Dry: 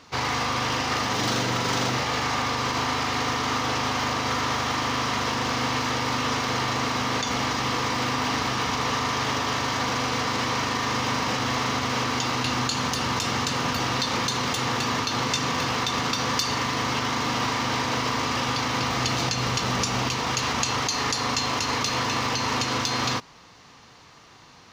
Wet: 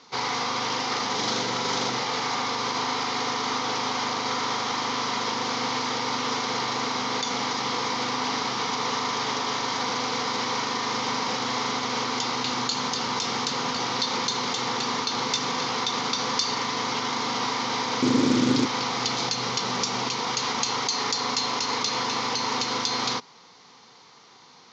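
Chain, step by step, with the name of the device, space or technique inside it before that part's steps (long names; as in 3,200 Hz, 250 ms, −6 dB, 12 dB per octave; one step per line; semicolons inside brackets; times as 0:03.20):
low-pass filter 5,900 Hz 24 dB per octave
0:18.02–0:18.66: low shelf with overshoot 440 Hz +11 dB, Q 3
full-range speaker at full volume (highs frequency-modulated by the lows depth 0.29 ms; loudspeaker in its box 260–7,700 Hz, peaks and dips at 310 Hz −7 dB, 620 Hz −9 dB, 1,200 Hz −4 dB, 1,700 Hz −8 dB, 2,700 Hz −8 dB, 6,800 Hz +4 dB)
level +2.5 dB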